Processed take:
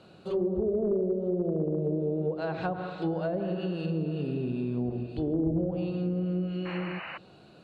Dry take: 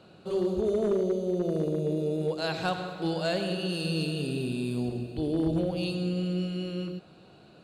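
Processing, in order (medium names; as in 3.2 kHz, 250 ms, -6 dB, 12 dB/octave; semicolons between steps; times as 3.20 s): painted sound noise, 6.65–7.18 s, 490–3000 Hz -40 dBFS; low-pass that closes with the level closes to 560 Hz, closed at -23.5 dBFS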